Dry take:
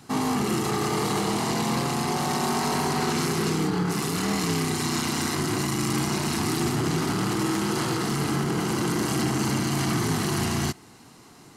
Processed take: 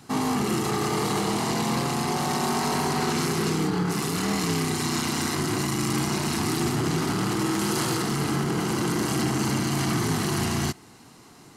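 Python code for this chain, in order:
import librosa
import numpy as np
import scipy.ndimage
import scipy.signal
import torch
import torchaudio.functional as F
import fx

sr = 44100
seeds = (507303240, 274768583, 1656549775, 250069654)

y = fx.high_shelf(x, sr, hz=5500.0, db=6.5, at=(7.59, 8.02))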